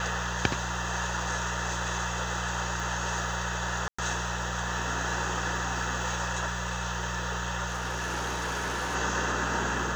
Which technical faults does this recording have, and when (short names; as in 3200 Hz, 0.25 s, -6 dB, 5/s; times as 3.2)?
hum 60 Hz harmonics 3 -36 dBFS
2.8 pop
3.88–3.98 gap 0.105 s
7.67–8.96 clipped -28 dBFS